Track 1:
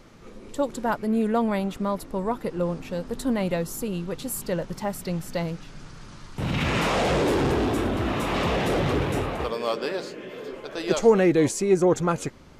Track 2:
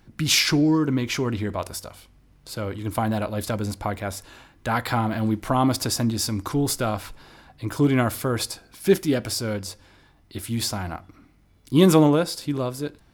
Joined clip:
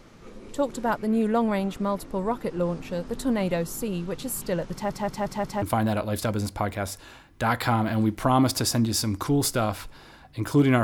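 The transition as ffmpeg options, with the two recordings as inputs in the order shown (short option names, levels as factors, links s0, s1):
-filter_complex "[0:a]apad=whole_dur=10.83,atrim=end=10.83,asplit=5[s0][s1][s2][s3][s4];[s0]atrim=end=4.902[s5];[s1]atrim=start=4.718:end=4.902[s6];[s2]atrim=start=4.718:end=4.902[s7];[s3]atrim=start=4.718:end=4.902[s8];[s4]atrim=start=4.718:end=4.902[s9];[1:a]atrim=start=2.868:end=8.08[s10];[s5][s6]acrossfade=d=0.004:c1=hsin:c2=hsin[s11];[s11][s7]acrossfade=d=0.004:c1=hsin:c2=hsin[s12];[s12][s8]acrossfade=d=0.004:c1=hsin:c2=hsin[s13];[s13][s9]acrossfade=d=0.004:c1=hsin:c2=hsin[s14];[s14][s10]acrossfade=d=0.004:c1=hsin:c2=hsin"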